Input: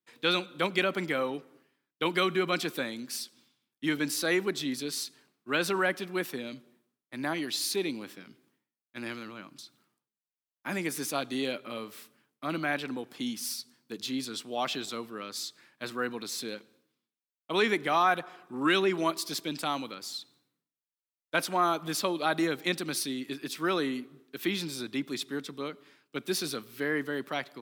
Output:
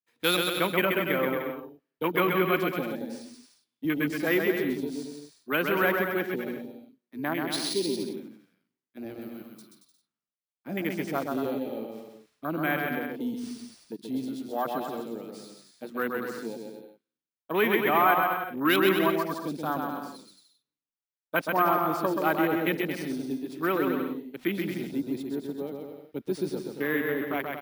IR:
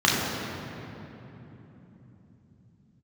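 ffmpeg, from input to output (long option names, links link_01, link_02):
-filter_complex "[0:a]afwtdn=0.0224,acrusher=samples=3:mix=1:aa=0.000001,asettb=1/sr,asplit=3[link_01][link_02][link_03];[link_01]atrim=end=9.214[link_04];[link_02]atrim=start=9.21:end=9.62,asetpts=PTS-STARTPTS,afade=type=in:duration=0.004:curve=qsin,afade=type=out:start_time=0.406:duration=0.004:curve=qsin,aemphasis=mode=production:type=50kf[link_05];[link_03]atrim=start=9.616[link_06];[link_04][link_05]acrossfade=duration=0.004:curve1=hsin:curve2=qsin[link_07];[link_07][link_06]acrossfade=duration=0.004:curve1=qsin:curve2=hsin,asplit=2[link_08][link_09];[link_09]aecho=0:1:130|227.5|300.6|355.5|396.6:0.631|0.398|0.251|0.158|0.1[link_10];[link_08][link_10]amix=inputs=2:normalize=0,volume=2dB"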